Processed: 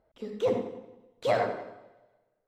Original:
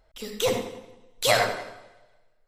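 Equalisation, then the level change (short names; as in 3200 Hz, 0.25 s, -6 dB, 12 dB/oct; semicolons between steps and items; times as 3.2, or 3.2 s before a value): band-pass 250 Hz, Q 0.6; low shelf 180 Hz -5.5 dB; +2.0 dB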